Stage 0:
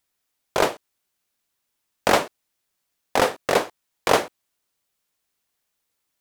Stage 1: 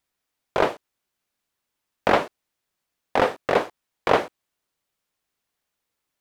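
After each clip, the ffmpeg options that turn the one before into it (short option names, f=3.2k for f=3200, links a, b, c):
-filter_complex "[0:a]acrossover=split=4100[a][b];[b]acompressor=threshold=-41dB:ratio=4:attack=1:release=60[c];[a][c]amix=inputs=2:normalize=0,highshelf=f=4k:g=-6.5"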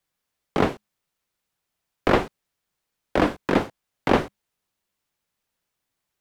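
-af "afreqshift=-210"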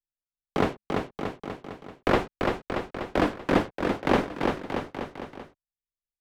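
-af "anlmdn=0.1,aecho=1:1:340|629|874.6|1083|1261:0.631|0.398|0.251|0.158|0.1,volume=-3.5dB"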